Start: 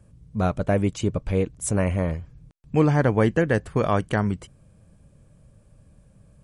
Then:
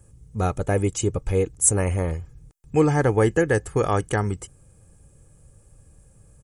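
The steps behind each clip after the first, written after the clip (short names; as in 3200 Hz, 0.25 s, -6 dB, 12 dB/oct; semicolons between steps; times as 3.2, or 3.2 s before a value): resonant high shelf 5500 Hz +8.5 dB, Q 1.5; comb 2.4 ms, depth 49%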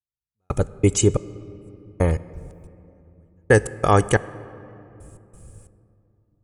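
step gate "...x.xx.." 90 bpm -60 dB; on a send at -16.5 dB: reverb RT60 2.9 s, pre-delay 4 ms; on the sum: gain +6.5 dB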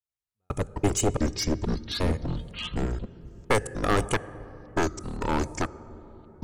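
one-sided fold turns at -14.5 dBFS; echoes that change speed 92 ms, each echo -5 st, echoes 3; gain -5 dB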